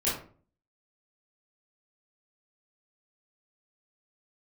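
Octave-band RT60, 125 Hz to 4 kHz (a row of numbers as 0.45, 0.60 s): 0.60, 0.55, 0.50, 0.40, 0.35, 0.25 s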